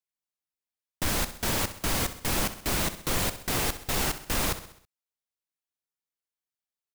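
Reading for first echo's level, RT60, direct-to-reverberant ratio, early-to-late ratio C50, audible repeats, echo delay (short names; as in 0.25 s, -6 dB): -13.0 dB, none, none, none, 4, 65 ms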